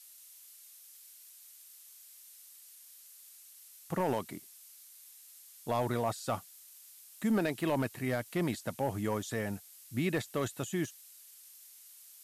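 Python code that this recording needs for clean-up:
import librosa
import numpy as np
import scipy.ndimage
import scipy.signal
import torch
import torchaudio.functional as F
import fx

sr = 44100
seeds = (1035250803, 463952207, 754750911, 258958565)

y = fx.fix_declip(x, sr, threshold_db=-23.0)
y = fx.noise_reduce(y, sr, print_start_s=3.4, print_end_s=3.9, reduce_db=24.0)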